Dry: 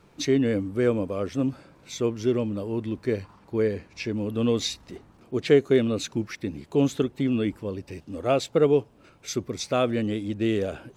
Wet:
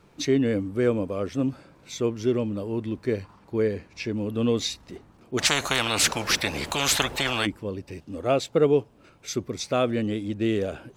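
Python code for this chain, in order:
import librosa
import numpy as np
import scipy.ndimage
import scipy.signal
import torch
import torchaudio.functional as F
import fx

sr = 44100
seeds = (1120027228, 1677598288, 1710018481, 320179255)

y = fx.spectral_comp(x, sr, ratio=10.0, at=(5.37, 7.45), fade=0.02)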